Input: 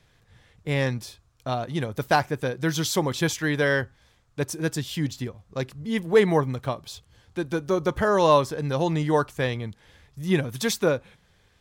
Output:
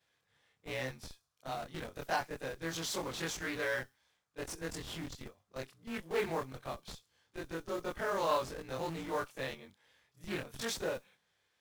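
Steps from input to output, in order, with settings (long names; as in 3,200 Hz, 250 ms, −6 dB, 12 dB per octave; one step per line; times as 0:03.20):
every overlapping window played backwards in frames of 61 ms
high-pass filter 600 Hz 6 dB per octave
in parallel at −6 dB: comparator with hysteresis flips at −35.5 dBFS
on the sum: noise that follows the level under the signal 23 dB
on a send: delay with a high-pass on its return 65 ms, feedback 39%, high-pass 5,000 Hz, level −18.5 dB
on the sum: highs frequency-modulated by the lows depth 0.23 ms
level −8.5 dB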